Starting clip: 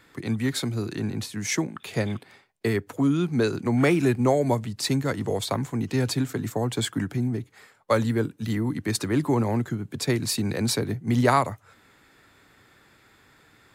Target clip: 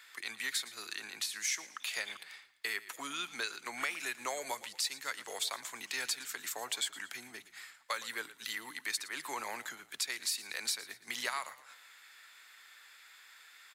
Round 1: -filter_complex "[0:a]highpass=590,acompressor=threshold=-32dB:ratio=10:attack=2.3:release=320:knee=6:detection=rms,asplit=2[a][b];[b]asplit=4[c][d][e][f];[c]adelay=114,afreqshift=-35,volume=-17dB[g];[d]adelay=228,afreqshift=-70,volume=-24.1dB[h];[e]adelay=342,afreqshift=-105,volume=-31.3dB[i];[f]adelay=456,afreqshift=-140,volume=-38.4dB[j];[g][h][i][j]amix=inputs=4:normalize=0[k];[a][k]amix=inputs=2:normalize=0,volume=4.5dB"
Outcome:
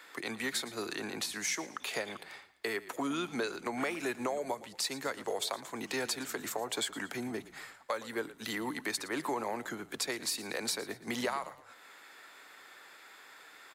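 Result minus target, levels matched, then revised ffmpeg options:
500 Hz band +10.0 dB
-filter_complex "[0:a]highpass=1.8k,acompressor=threshold=-32dB:ratio=10:attack=2.3:release=320:knee=6:detection=rms,asplit=2[a][b];[b]asplit=4[c][d][e][f];[c]adelay=114,afreqshift=-35,volume=-17dB[g];[d]adelay=228,afreqshift=-70,volume=-24.1dB[h];[e]adelay=342,afreqshift=-105,volume=-31.3dB[i];[f]adelay=456,afreqshift=-140,volume=-38.4dB[j];[g][h][i][j]amix=inputs=4:normalize=0[k];[a][k]amix=inputs=2:normalize=0,volume=4.5dB"

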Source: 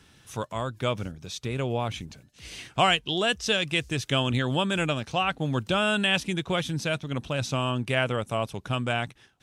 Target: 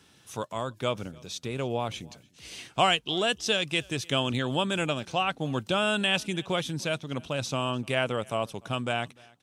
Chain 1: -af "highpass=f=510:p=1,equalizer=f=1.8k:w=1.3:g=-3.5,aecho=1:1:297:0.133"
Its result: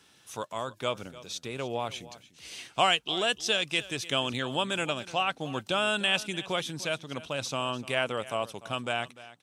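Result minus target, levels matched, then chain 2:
echo-to-direct +8.5 dB; 250 Hz band -4.0 dB
-af "highpass=f=190:p=1,equalizer=f=1.8k:w=1.3:g=-3.5,aecho=1:1:297:0.0501"

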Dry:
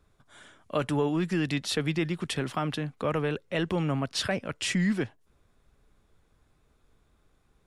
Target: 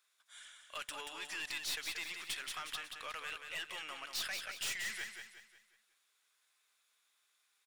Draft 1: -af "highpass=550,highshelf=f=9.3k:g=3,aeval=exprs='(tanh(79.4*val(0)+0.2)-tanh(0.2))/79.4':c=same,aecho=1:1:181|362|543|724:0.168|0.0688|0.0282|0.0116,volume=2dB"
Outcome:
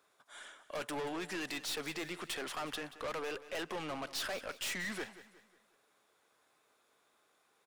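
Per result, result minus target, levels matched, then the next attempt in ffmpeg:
500 Hz band +13.5 dB; echo-to-direct -9.5 dB
-af "highpass=2.2k,highshelf=f=9.3k:g=3,aeval=exprs='(tanh(79.4*val(0)+0.2)-tanh(0.2))/79.4':c=same,aecho=1:1:181|362|543|724:0.168|0.0688|0.0282|0.0116,volume=2dB"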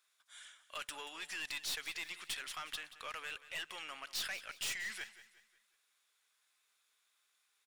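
echo-to-direct -9.5 dB
-af "highpass=2.2k,highshelf=f=9.3k:g=3,aeval=exprs='(tanh(79.4*val(0)+0.2)-tanh(0.2))/79.4':c=same,aecho=1:1:181|362|543|724|905:0.501|0.205|0.0842|0.0345|0.0142,volume=2dB"

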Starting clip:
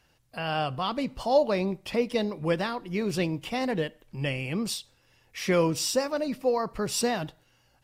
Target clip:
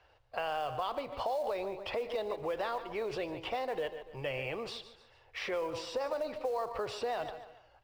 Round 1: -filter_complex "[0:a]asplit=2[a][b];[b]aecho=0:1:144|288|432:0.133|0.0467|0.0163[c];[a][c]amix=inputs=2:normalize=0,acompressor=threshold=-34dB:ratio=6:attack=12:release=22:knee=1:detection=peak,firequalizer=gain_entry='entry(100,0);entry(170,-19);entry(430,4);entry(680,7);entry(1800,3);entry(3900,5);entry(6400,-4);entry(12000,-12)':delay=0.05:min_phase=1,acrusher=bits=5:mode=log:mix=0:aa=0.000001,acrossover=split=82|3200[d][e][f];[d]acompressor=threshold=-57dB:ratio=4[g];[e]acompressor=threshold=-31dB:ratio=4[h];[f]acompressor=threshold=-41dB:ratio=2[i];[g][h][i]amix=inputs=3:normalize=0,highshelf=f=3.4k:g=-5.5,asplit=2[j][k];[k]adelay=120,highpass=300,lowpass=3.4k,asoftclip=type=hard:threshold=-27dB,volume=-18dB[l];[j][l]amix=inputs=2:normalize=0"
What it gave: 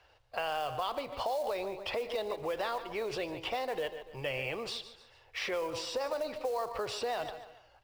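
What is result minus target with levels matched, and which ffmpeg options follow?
8000 Hz band +5.5 dB
-filter_complex "[0:a]asplit=2[a][b];[b]aecho=0:1:144|288|432:0.133|0.0467|0.0163[c];[a][c]amix=inputs=2:normalize=0,acompressor=threshold=-34dB:ratio=6:attack=12:release=22:knee=1:detection=peak,firequalizer=gain_entry='entry(100,0);entry(170,-19);entry(430,4);entry(680,7);entry(1800,3);entry(3900,5);entry(6400,-4);entry(12000,-12)':delay=0.05:min_phase=1,acrusher=bits=5:mode=log:mix=0:aa=0.000001,acrossover=split=82|3200[d][e][f];[d]acompressor=threshold=-57dB:ratio=4[g];[e]acompressor=threshold=-31dB:ratio=4[h];[f]acompressor=threshold=-41dB:ratio=2[i];[g][h][i]amix=inputs=3:normalize=0,highshelf=f=3.4k:g=-13.5,asplit=2[j][k];[k]adelay=120,highpass=300,lowpass=3.4k,asoftclip=type=hard:threshold=-27dB,volume=-18dB[l];[j][l]amix=inputs=2:normalize=0"

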